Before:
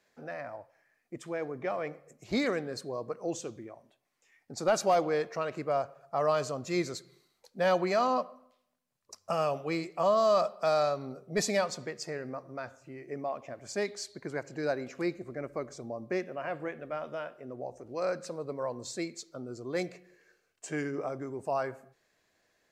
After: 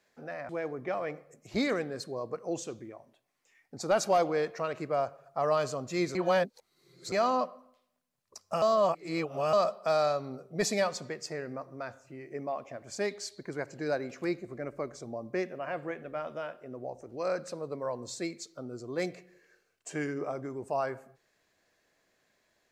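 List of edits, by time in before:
0.49–1.26 cut
6.92–7.89 reverse
9.39–10.3 reverse

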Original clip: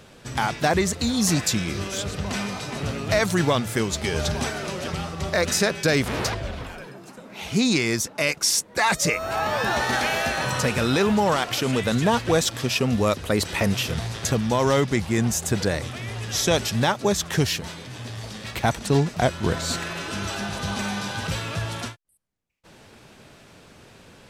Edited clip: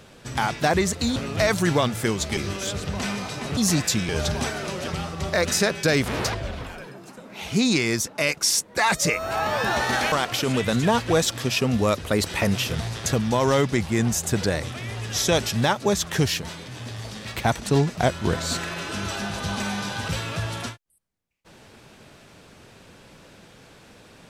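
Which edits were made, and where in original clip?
1.16–1.68 swap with 2.88–4.09
10.12–11.31 cut

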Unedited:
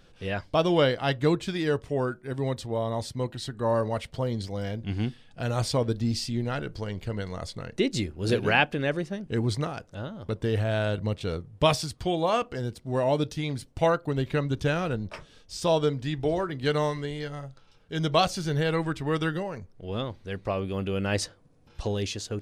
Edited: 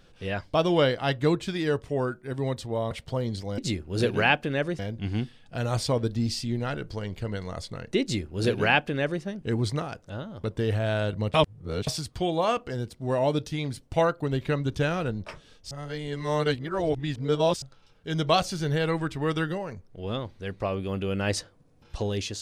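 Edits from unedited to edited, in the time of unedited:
2.91–3.97 cut
7.87–9.08 copy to 4.64
11.19–11.72 reverse
15.56–17.47 reverse

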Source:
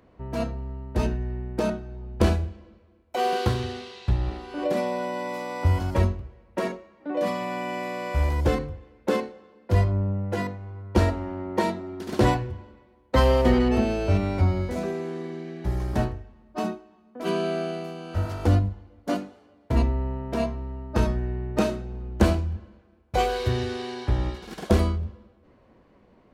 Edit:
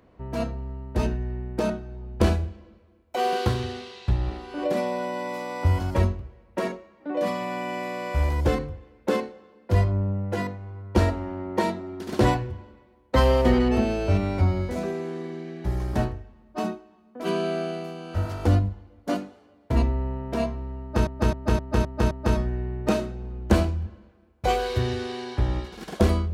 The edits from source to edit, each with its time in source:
20.81–21.07 loop, 6 plays

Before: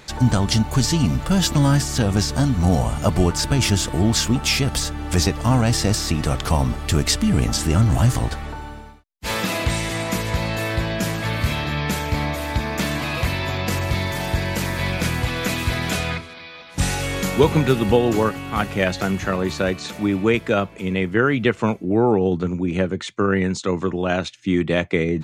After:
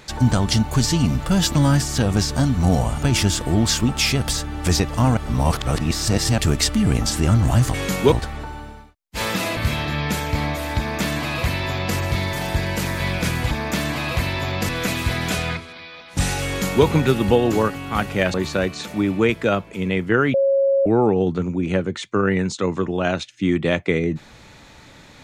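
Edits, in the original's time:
3.03–3.5 cut
5.64–6.85 reverse
9.66–11.36 cut
12.57–13.75 copy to 15.3
17.08–17.46 copy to 8.21
18.95–19.39 cut
21.39–21.91 bleep 548 Hz -14 dBFS

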